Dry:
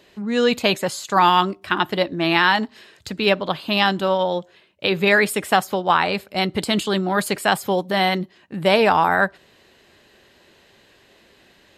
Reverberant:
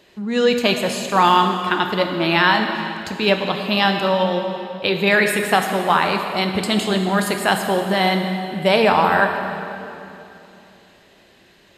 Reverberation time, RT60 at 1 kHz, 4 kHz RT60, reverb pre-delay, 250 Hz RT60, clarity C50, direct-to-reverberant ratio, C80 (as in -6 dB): 2.9 s, 2.7 s, 2.5 s, 3 ms, 3.5 s, 5.0 dB, 4.0 dB, 6.0 dB